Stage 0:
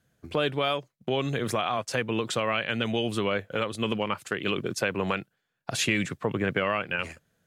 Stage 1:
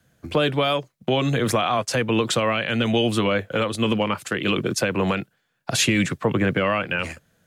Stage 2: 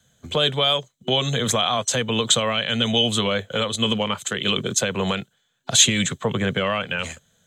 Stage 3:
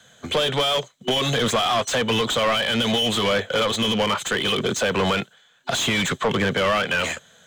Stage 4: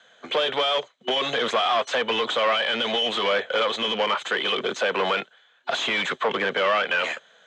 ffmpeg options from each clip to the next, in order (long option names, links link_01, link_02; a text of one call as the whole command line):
ffmpeg -i in.wav -filter_complex "[0:a]bandreject=frequency=410:width=12,acrossover=split=190|450|4500[link_01][link_02][link_03][link_04];[link_03]alimiter=limit=-22dB:level=0:latency=1:release=29[link_05];[link_01][link_02][link_05][link_04]amix=inputs=4:normalize=0,volume=8dB" out.wav
ffmpeg -i in.wav -af "superequalizer=6b=0.398:13b=3.16:15b=3.55,volume=-1.5dB" out.wav
ffmpeg -i in.wav -filter_complex "[0:a]alimiter=limit=-13dB:level=0:latency=1:release=70,asplit=2[link_01][link_02];[link_02]highpass=frequency=720:poles=1,volume=22dB,asoftclip=type=tanh:threshold=-13dB[link_03];[link_01][link_03]amix=inputs=2:normalize=0,lowpass=frequency=2600:poles=1,volume=-6dB" out.wav
ffmpeg -i in.wav -af "highpass=410,lowpass=3500" out.wav